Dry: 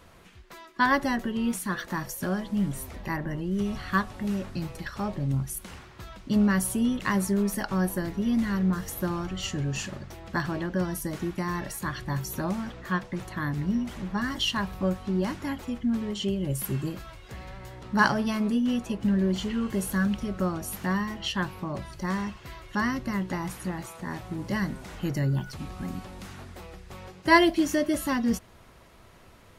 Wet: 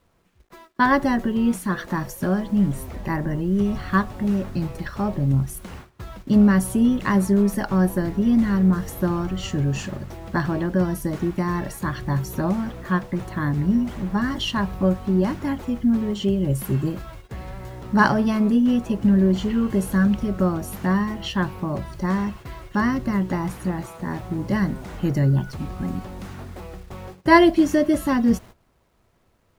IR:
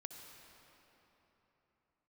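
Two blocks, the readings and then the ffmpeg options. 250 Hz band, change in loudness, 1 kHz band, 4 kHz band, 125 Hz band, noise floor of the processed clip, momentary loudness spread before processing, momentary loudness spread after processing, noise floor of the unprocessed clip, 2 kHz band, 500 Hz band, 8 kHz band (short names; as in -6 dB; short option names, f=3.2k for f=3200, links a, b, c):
+7.5 dB, +6.5 dB, +4.5 dB, 0.0 dB, +7.5 dB, -62 dBFS, 13 LU, 13 LU, -53 dBFS, +2.5 dB, +6.5 dB, -1.0 dB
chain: -af "acrusher=bits=8:mix=0:aa=0.000001,agate=range=-17dB:threshold=-45dB:ratio=16:detection=peak,tiltshelf=f=1.5k:g=4.5,volume=3dB"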